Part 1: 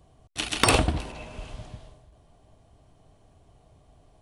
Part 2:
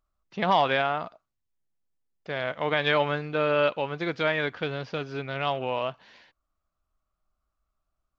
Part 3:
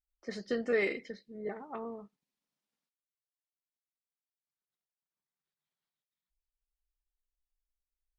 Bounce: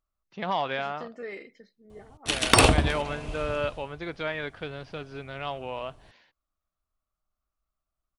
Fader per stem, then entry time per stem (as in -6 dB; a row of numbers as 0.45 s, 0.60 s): +2.5 dB, -6.0 dB, -9.0 dB; 1.90 s, 0.00 s, 0.50 s